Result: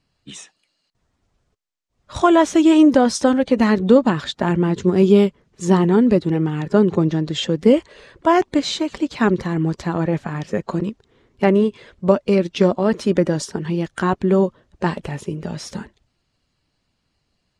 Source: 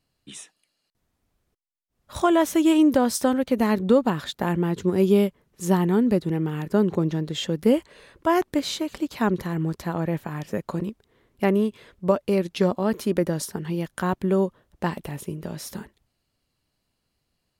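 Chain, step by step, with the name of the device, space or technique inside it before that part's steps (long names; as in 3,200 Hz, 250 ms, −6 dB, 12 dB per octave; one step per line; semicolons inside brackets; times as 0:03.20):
clip after many re-uploads (low-pass filter 7,700 Hz 24 dB per octave; spectral magnitudes quantised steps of 15 dB)
level +6 dB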